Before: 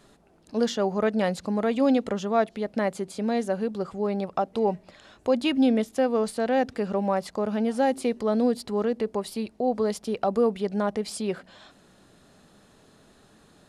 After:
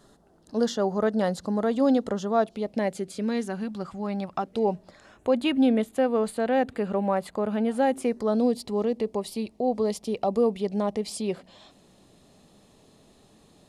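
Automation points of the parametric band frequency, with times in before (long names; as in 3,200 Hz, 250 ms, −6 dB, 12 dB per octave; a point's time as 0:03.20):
parametric band −13 dB 0.45 octaves
0:02.33 2,400 Hz
0:03.67 450 Hz
0:04.34 450 Hz
0:04.71 1,800 Hz
0:05.29 5,500 Hz
0:07.89 5,500 Hz
0:08.49 1,500 Hz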